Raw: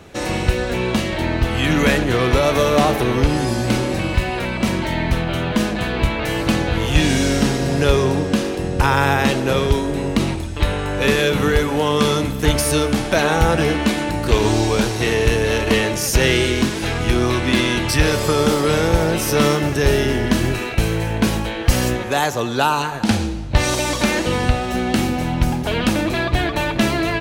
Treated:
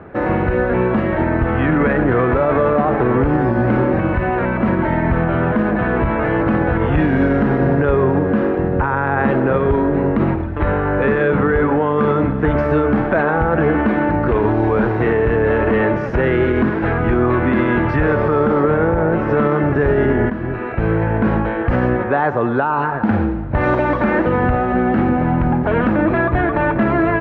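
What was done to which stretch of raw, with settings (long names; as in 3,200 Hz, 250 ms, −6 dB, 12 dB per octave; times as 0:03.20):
0:18.63–0:19.30: high-shelf EQ 4,100 Hz −9.5 dB
0:20.30–0:20.94: fade in, from −14.5 dB
whole clip: Chebyshev low-pass filter 1,600 Hz, order 3; low-shelf EQ 89 Hz −8 dB; brickwall limiter −14 dBFS; level +7 dB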